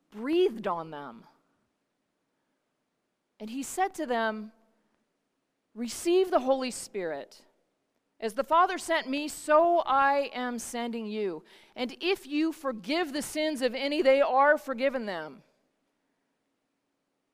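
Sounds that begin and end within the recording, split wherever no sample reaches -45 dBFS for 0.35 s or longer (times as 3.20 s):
3.40–4.49 s
5.76–7.37 s
8.21–15.37 s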